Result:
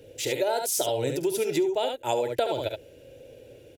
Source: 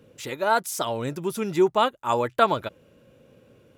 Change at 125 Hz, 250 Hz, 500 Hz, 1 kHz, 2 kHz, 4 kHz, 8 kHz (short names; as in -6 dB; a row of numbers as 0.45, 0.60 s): -3.0, -3.0, -0.5, -8.0, -6.5, +0.5, +5.0 dB